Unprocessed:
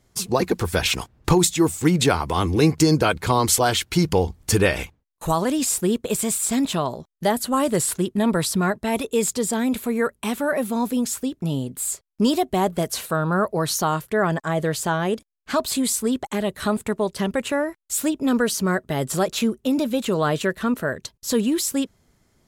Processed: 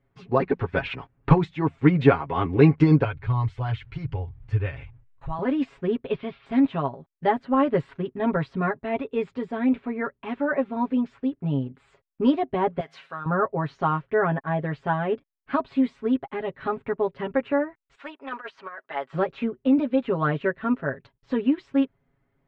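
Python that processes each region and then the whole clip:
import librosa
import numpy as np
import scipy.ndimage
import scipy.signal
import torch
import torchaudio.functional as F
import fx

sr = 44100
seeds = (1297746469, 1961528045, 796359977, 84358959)

y = fx.chain(x, sr, fx.curve_eq(hz=(120.0, 180.0, 6300.0, 11000.0), db=(0, -20, -10, -2)),
    fx.env_flatten(amount_pct=50), at=(3.04, 5.39))
y = fx.chain(y, sr, fx.steep_lowpass(hz=5100.0, slope=48),
    fx.peak_eq(hz=3300.0, db=6.0, octaves=0.6), at=(6.0, 6.46))
y = fx.chain(y, sr, fx.tilt_eq(slope=4.5),
    fx.comb_fb(f0_hz=53.0, decay_s=0.69, harmonics='odd', damping=0.0, mix_pct=40), at=(12.8, 13.26))
y = fx.chain(y, sr, fx.cheby1_highpass(hz=1000.0, order=2),
    fx.over_compress(threshold_db=-30.0, ratio=-0.5),
    fx.leveller(passes=1), at=(17.95, 19.13))
y = scipy.signal.sosfilt(scipy.signal.butter(4, 2500.0, 'lowpass', fs=sr, output='sos'), y)
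y = y + 0.8 * np.pad(y, (int(7.3 * sr / 1000.0), 0))[:len(y)]
y = fx.upward_expand(y, sr, threshold_db=-29.0, expansion=1.5)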